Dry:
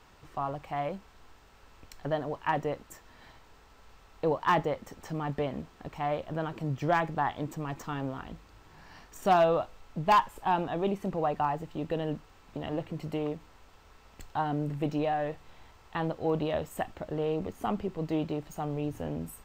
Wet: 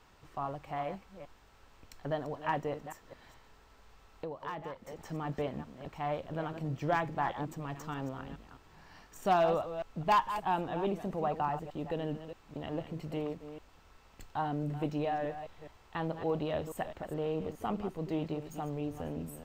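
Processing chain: chunks repeated in reverse 209 ms, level -10 dB; 2.87–4.99 s: compression 4:1, threshold -35 dBFS, peak gain reduction 12.5 dB; trim -4 dB

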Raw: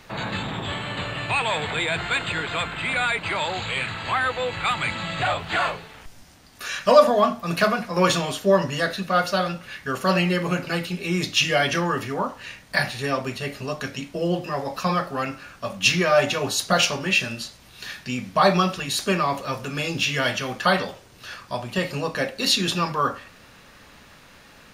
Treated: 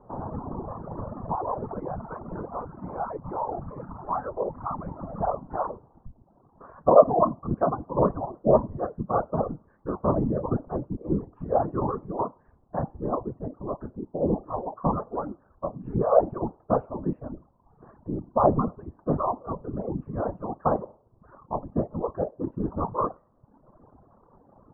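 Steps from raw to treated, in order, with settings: whisper effect; steep low-pass 1.1 kHz 48 dB/octave; reverb removal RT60 0.88 s; trim -1 dB

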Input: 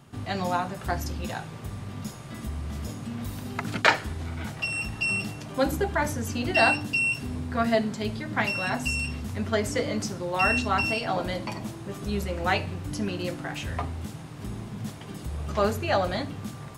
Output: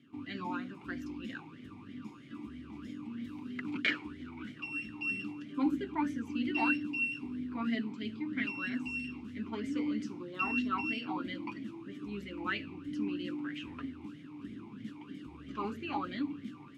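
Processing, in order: in parallel at -4.5 dB: hard clipper -15 dBFS, distortion -18 dB; on the sum: talking filter i-u 3.1 Hz

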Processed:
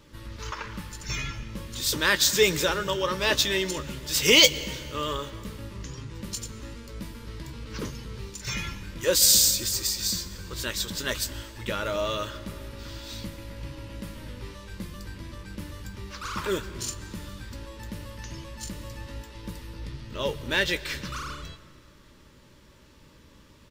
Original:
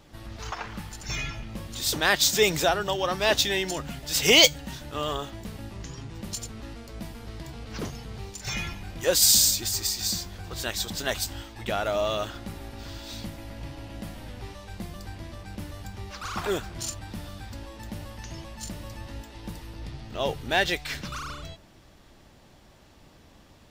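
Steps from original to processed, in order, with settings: Butterworth band-stop 730 Hz, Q 2.8; doubling 16 ms -12 dB; reverberation RT60 2.5 s, pre-delay 103 ms, DRR 16.5 dB

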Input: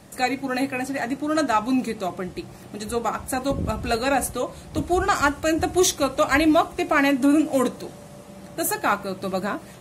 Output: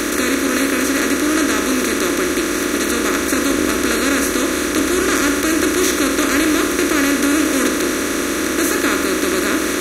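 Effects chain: spectral levelling over time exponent 0.2; static phaser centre 310 Hz, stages 4; trim -2.5 dB

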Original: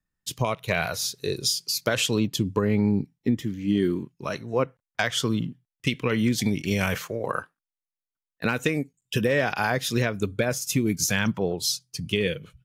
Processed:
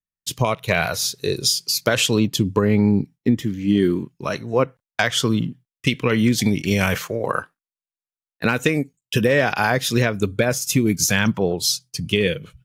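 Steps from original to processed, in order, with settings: gate with hold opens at -47 dBFS; trim +5.5 dB

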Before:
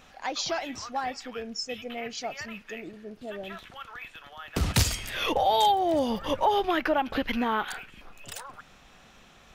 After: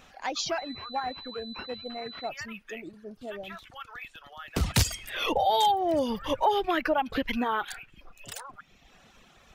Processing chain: reverb removal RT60 0.97 s; 0.58–2.29 s: class-D stage that switches slowly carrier 4 kHz

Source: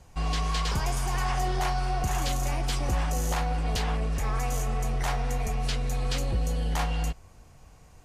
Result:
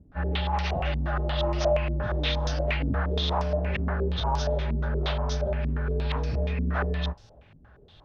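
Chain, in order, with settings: frequency axis rescaled in octaves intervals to 81%; bit crusher 11-bit; step-sequenced low-pass 8.5 Hz 270–5600 Hz

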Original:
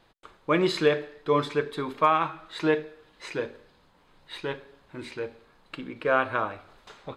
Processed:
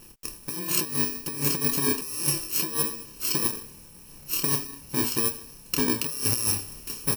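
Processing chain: bit-reversed sample order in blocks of 64 samples; doubling 28 ms -5 dB; compressor with a negative ratio -33 dBFS, ratio -1; trim +6 dB

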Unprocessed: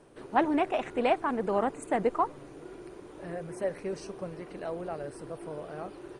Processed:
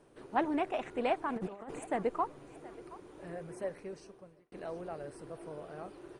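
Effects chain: 1.36–1.79 s: compressor with a negative ratio -34 dBFS, ratio -0.5; thinning echo 723 ms, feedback 37%, level -18 dB; 3.56–4.52 s: fade out; trim -5.5 dB

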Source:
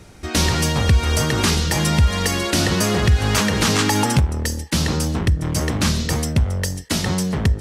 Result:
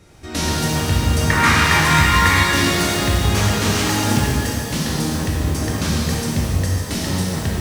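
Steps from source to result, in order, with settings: 1.30–2.45 s: high-order bell 1.5 kHz +13.5 dB; pitch-shifted reverb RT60 2.4 s, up +12 st, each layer -8 dB, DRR -4.5 dB; trim -7 dB

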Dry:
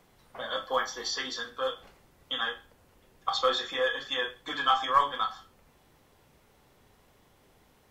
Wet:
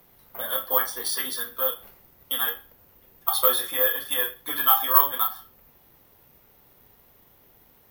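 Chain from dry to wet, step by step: careless resampling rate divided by 3×, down filtered, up zero stuff; one-sided clip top -6 dBFS; trim +1 dB; Vorbis 128 kbps 44.1 kHz

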